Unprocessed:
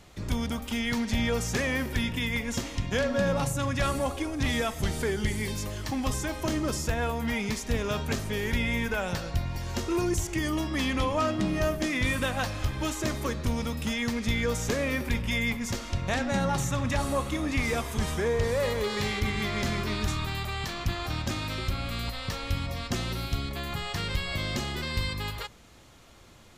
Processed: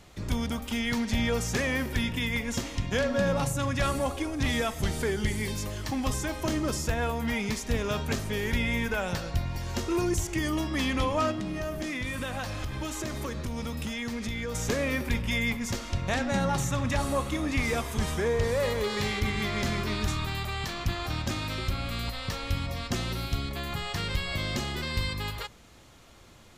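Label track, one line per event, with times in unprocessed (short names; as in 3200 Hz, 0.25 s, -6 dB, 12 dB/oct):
11.310000	14.550000	compressor, threshold -29 dBFS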